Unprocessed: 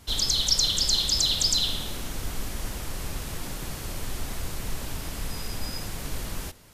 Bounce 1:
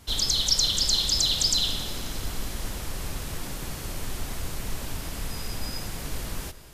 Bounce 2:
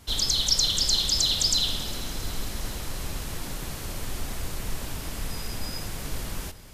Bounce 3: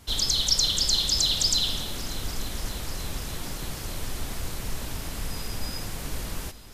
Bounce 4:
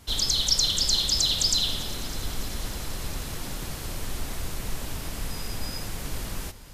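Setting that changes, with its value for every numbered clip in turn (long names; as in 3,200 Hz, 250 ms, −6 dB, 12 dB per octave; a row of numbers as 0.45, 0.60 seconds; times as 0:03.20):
echo machine with several playback heads, delay time: 89, 135, 295, 201 milliseconds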